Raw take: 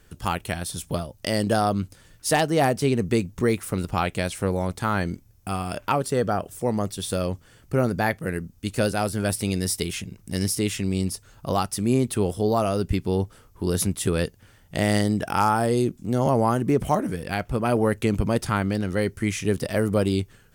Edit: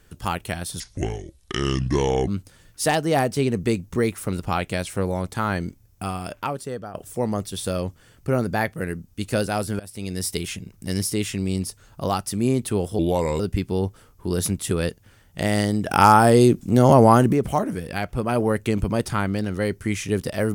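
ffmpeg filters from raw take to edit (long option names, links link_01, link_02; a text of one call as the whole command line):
ffmpeg -i in.wav -filter_complex "[0:a]asplit=9[link_01][link_02][link_03][link_04][link_05][link_06][link_07][link_08][link_09];[link_01]atrim=end=0.804[link_10];[link_02]atrim=start=0.8:end=1.73,asetpts=PTS-STARTPTS,asetrate=27783,aresample=44100[link_11];[link_03]atrim=start=1.726:end=6.4,asetpts=PTS-STARTPTS,afade=type=out:start_time=3.764:duration=0.91:silence=0.188365[link_12];[link_04]atrim=start=6.4:end=9.25,asetpts=PTS-STARTPTS,afade=type=in:duration=0.004:curve=hsin:silence=0.188365,afade=type=out:start_time=2.846:duration=0.004:curve=hsin:silence=0.0630957[link_13];[link_05]atrim=start=9.25:end=12.444,asetpts=PTS-STARTPTS,afade=type=in:duration=0.53:silence=0.0630957[link_14];[link_06]atrim=start=12.44:end=12.76,asetpts=PTS-STARTPTS,asetrate=34398,aresample=44100,atrim=end_sample=18092,asetpts=PTS-STARTPTS[link_15];[link_07]atrim=start=12.756:end=15.252[link_16];[link_08]atrim=start=15.248:end=16.692,asetpts=PTS-STARTPTS,volume=7.5dB[link_17];[link_09]atrim=start=16.688[link_18];[link_10][link_11]acrossfade=duration=0.004:curve1=hsin:curve2=hsin[link_19];[link_12][link_13][link_14]concat=n=3:v=0:a=1[link_20];[link_19][link_20]acrossfade=duration=0.004:curve1=hsin:curve2=hsin[link_21];[link_21][link_15]acrossfade=duration=0.004:curve1=hsin:curve2=hsin[link_22];[link_22][link_16]acrossfade=duration=0.004:curve1=hsin:curve2=hsin[link_23];[link_23][link_17]acrossfade=duration=0.004:curve1=hsin:curve2=hsin[link_24];[link_24][link_18]acrossfade=duration=0.004:curve1=hsin:curve2=hsin" out.wav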